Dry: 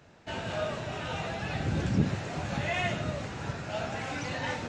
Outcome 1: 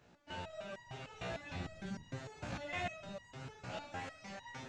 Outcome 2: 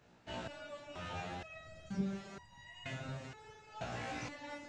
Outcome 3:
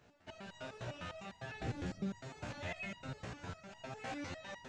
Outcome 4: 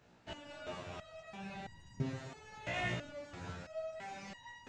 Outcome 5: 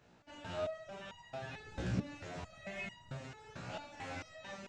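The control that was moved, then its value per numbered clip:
step-sequenced resonator, speed: 6.6, 2.1, 9.9, 3, 4.5 Hertz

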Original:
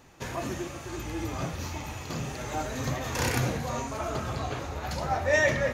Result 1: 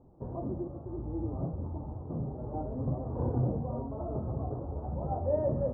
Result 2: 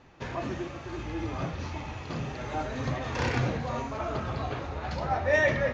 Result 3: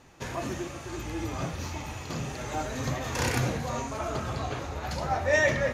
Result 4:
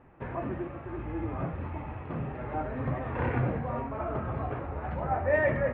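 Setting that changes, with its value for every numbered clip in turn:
Bessel low-pass filter, frequency: 520, 3,600, 12,000, 1,400 Hertz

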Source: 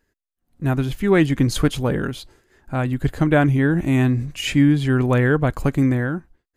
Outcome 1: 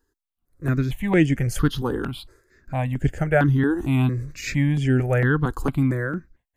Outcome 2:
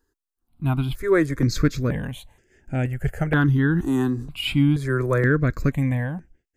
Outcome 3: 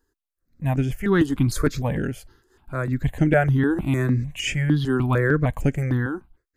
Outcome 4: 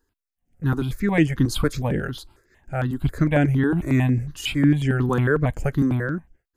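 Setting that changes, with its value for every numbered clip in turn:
step-sequenced phaser, speed: 4.4, 2.1, 6.6, 11 Hertz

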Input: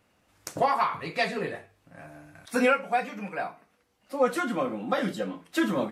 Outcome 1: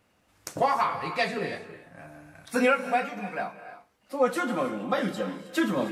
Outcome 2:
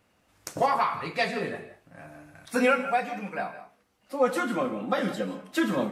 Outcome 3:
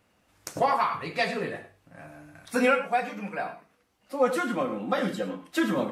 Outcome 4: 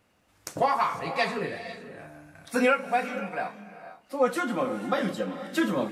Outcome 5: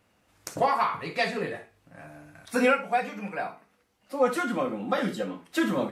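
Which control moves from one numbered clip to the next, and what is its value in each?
reverb whose tail is shaped and stops, gate: 350, 200, 130, 530, 80 milliseconds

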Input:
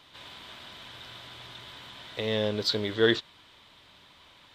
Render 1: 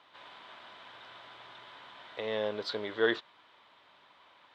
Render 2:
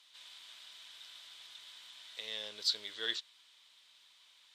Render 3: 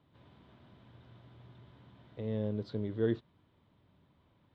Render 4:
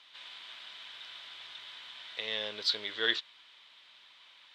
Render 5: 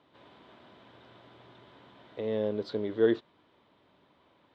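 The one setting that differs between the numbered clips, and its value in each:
resonant band-pass, frequency: 970, 7,900, 130, 2,900, 350 Hertz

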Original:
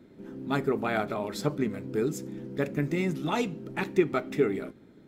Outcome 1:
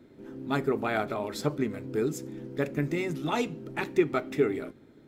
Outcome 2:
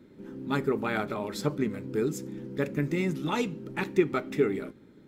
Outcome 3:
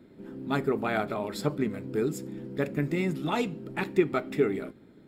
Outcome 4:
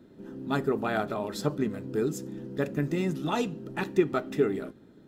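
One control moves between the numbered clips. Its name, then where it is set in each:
notch filter, centre frequency: 190, 690, 6,100, 2,200 Hertz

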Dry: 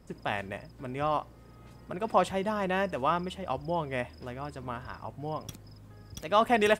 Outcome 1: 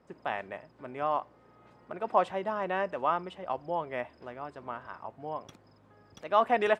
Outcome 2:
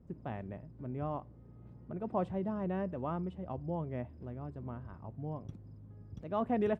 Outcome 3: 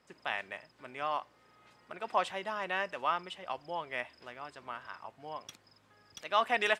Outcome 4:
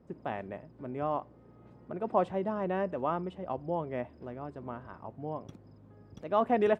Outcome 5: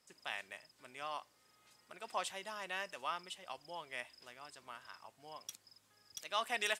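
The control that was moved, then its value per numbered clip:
resonant band-pass, frequency: 880, 130, 2,400, 340, 7,000 Hertz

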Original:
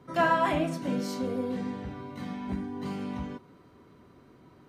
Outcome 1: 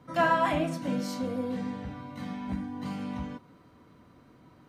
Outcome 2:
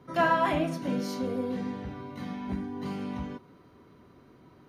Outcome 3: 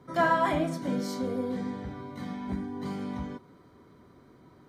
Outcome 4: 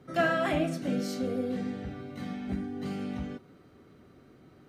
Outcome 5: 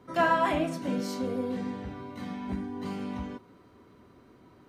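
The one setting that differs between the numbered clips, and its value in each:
notch filter, centre frequency: 390, 7,800, 2,700, 990, 150 Hertz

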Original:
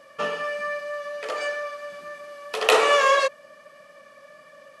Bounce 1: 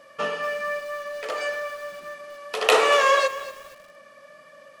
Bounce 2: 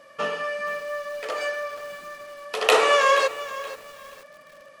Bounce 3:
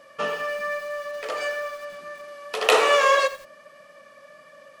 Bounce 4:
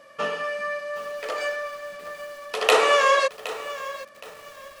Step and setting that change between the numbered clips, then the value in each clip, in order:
feedback echo at a low word length, delay time: 235, 476, 85, 768 milliseconds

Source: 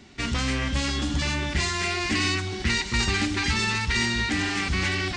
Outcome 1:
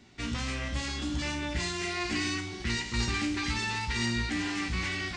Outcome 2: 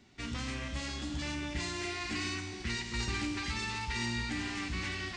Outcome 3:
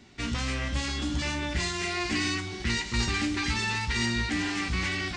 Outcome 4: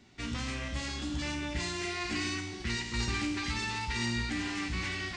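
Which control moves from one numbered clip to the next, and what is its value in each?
tuned comb filter, decay: 0.42, 2, 0.19, 0.93 seconds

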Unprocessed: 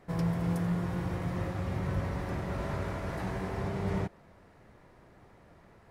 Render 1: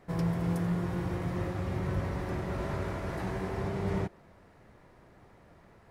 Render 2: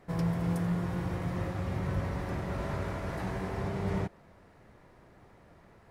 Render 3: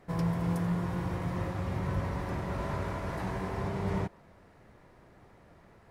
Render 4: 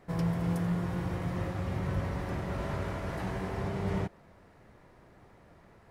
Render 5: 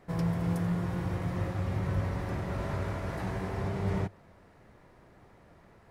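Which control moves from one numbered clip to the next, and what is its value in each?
dynamic equaliser, frequency: 360, 8,700, 990, 3,000, 100 Hertz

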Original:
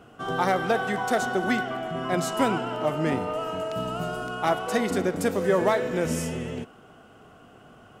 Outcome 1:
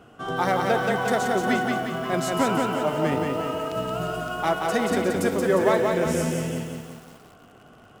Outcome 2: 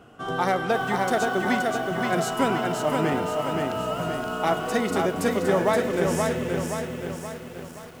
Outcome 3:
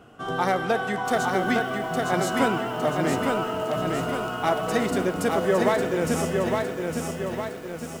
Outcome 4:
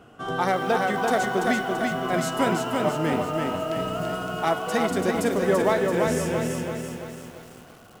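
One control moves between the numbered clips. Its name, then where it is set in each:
feedback echo at a low word length, delay time: 177, 524, 859, 336 milliseconds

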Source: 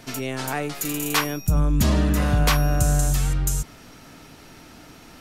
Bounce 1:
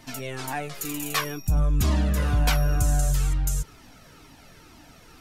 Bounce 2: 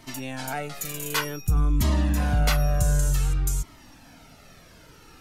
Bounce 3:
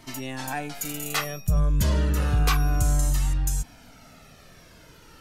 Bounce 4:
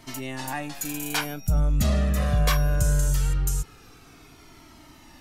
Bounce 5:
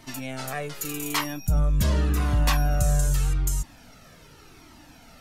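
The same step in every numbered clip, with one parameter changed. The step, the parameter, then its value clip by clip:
flanger whose copies keep moving one way, speed: 2.1, 0.54, 0.33, 0.21, 0.85 Hertz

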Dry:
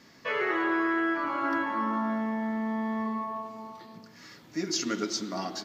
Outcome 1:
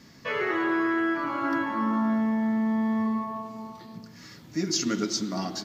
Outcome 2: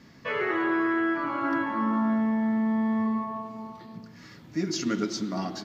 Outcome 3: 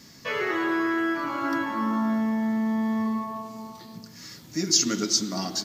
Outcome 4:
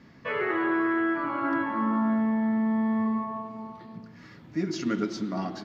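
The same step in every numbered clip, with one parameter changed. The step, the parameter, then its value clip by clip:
bass and treble, treble: +4, −4, +14, −14 decibels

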